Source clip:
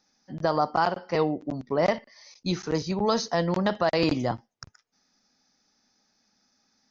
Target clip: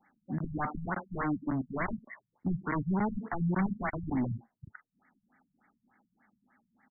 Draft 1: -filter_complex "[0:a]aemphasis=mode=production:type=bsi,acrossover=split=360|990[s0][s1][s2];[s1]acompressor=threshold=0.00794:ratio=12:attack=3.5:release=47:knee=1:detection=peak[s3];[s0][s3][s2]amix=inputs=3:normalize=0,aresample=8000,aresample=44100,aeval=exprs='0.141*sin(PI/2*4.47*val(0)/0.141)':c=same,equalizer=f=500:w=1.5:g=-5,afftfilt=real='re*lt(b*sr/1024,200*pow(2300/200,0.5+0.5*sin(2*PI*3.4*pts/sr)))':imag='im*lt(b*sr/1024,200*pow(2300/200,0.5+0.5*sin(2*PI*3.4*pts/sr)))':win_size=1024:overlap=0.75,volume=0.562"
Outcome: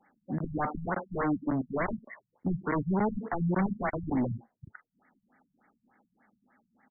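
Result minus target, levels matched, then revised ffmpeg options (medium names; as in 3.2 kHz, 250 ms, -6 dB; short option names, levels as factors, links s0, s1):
500 Hz band +4.0 dB
-filter_complex "[0:a]aemphasis=mode=production:type=bsi,acrossover=split=360|990[s0][s1][s2];[s1]acompressor=threshold=0.00794:ratio=12:attack=3.5:release=47:knee=1:detection=peak[s3];[s0][s3][s2]amix=inputs=3:normalize=0,aresample=8000,aresample=44100,aeval=exprs='0.141*sin(PI/2*4.47*val(0)/0.141)':c=same,equalizer=f=500:w=1.5:g=-14,afftfilt=real='re*lt(b*sr/1024,200*pow(2300/200,0.5+0.5*sin(2*PI*3.4*pts/sr)))':imag='im*lt(b*sr/1024,200*pow(2300/200,0.5+0.5*sin(2*PI*3.4*pts/sr)))':win_size=1024:overlap=0.75,volume=0.562"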